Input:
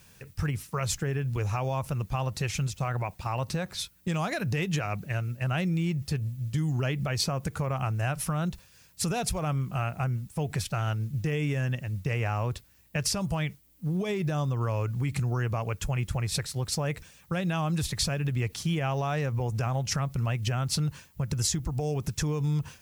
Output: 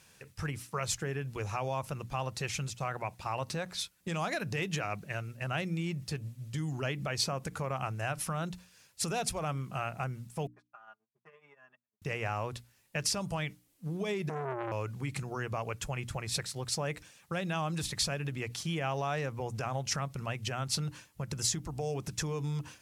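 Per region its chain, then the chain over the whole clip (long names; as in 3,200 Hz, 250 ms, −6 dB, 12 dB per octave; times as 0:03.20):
0:10.47–0:12.02: noise gate −27 dBFS, range −45 dB + resonant band-pass 1,100 Hz, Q 3.3 + comb filter 4.9 ms, depth 67%
0:14.29–0:14.72: low-shelf EQ 240 Hz +6.5 dB + phaser with its sweep stopped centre 1,300 Hz, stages 4 + saturating transformer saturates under 1,000 Hz
whole clip: low-pass filter 12,000 Hz 12 dB per octave; low-shelf EQ 150 Hz −10.5 dB; mains-hum notches 60/120/180/240/300 Hz; level −2 dB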